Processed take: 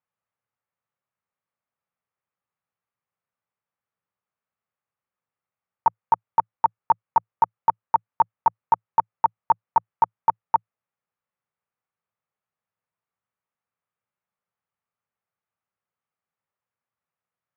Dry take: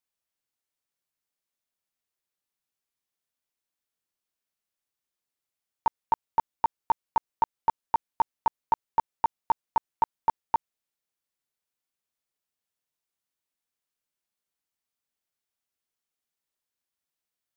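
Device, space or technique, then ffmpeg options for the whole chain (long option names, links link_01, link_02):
bass cabinet: -af "highpass=65,equalizer=frequency=110:width_type=q:width=4:gain=9,equalizer=frequency=170:width_type=q:width=4:gain=6,equalizer=frequency=310:width_type=q:width=4:gain=-7,equalizer=frequency=530:width_type=q:width=4:gain=4,equalizer=frequency=840:width_type=q:width=4:gain=4,equalizer=frequency=1200:width_type=q:width=4:gain=7,lowpass=frequency=2400:width=0.5412,lowpass=frequency=2400:width=1.3066,volume=1.5dB"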